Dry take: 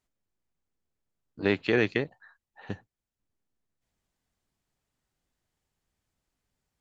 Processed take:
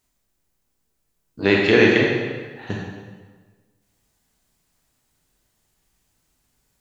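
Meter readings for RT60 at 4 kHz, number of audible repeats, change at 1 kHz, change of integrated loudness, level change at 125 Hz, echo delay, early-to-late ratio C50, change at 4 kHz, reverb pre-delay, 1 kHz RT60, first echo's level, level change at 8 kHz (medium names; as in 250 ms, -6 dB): 1.2 s, no echo, +11.0 dB, +9.0 dB, +9.5 dB, no echo, 0.0 dB, +12.5 dB, 21 ms, 1.4 s, no echo, no reading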